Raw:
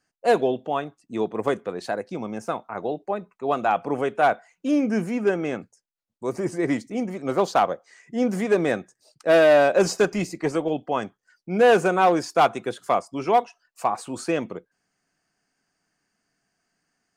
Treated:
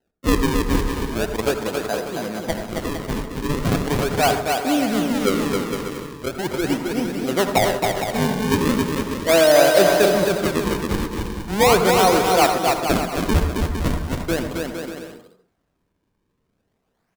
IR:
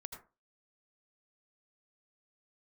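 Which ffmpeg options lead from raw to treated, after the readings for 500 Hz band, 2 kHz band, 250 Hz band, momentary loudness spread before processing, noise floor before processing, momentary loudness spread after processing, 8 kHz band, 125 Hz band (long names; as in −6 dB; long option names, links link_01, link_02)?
+2.5 dB, +4.0 dB, +4.5 dB, 13 LU, −80 dBFS, 12 LU, +11.5 dB, +10.0 dB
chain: -filter_complex "[0:a]acrusher=samples=38:mix=1:aa=0.000001:lfo=1:lforange=60.8:lforate=0.39,aecho=1:1:270|459|591.3|683.9|748.7:0.631|0.398|0.251|0.158|0.1,asplit=2[link_01][link_02];[1:a]atrim=start_sample=2205[link_03];[link_02][link_03]afir=irnorm=-1:irlink=0,volume=6.5dB[link_04];[link_01][link_04]amix=inputs=2:normalize=0,volume=-6dB"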